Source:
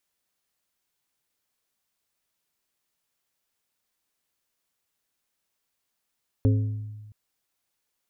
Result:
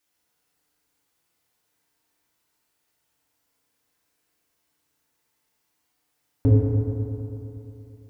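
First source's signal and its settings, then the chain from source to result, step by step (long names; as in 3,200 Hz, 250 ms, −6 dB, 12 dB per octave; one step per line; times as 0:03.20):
struck glass plate, length 0.67 s, lowest mode 106 Hz, modes 4, decay 1.40 s, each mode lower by 6 dB, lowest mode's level −16 dB
feedback delay network reverb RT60 3.1 s, high-frequency decay 0.35×, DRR −7 dB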